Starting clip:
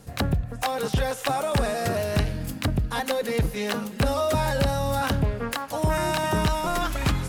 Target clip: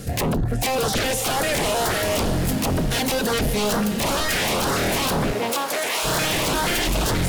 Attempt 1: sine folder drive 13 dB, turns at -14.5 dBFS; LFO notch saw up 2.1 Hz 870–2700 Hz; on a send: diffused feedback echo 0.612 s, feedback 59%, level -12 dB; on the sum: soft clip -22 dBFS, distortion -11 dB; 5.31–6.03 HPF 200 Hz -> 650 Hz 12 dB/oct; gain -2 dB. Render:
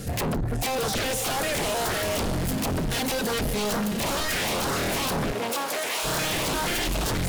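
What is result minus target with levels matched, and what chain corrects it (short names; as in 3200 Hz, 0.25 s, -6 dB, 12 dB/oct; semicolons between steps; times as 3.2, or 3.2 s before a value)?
soft clip: distortion +11 dB
sine folder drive 13 dB, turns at -14.5 dBFS; LFO notch saw up 2.1 Hz 870–2700 Hz; on a send: diffused feedback echo 0.612 s, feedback 59%, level -12 dB; on the sum: soft clip -12.5 dBFS, distortion -22 dB; 5.31–6.03 HPF 200 Hz -> 650 Hz 12 dB/oct; gain -2 dB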